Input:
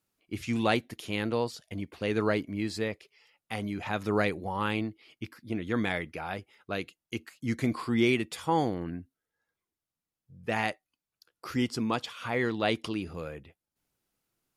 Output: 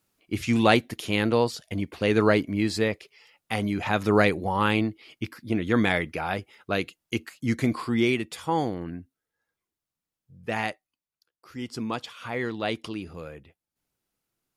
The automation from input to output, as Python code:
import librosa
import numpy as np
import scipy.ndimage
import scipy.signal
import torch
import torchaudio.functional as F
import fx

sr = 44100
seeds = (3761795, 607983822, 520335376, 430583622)

y = fx.gain(x, sr, db=fx.line((7.19, 7.0), (8.16, 1.0), (10.65, 1.0), (11.46, -12.0), (11.78, -1.0)))